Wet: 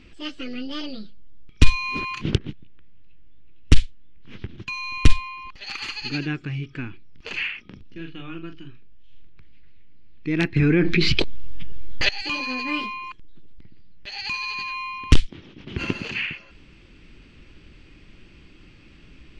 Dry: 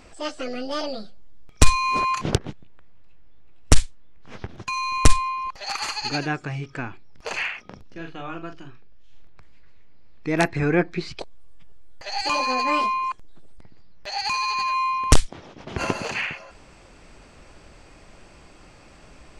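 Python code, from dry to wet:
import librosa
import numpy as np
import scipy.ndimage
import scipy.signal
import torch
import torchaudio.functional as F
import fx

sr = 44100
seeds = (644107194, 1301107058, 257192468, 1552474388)

y = fx.curve_eq(x, sr, hz=(330.0, 680.0, 3000.0, 8500.0), db=(0, -18, 2, -18))
y = fx.env_flatten(y, sr, amount_pct=100, at=(10.56, 12.09))
y = y * 10.0 ** (1.5 / 20.0)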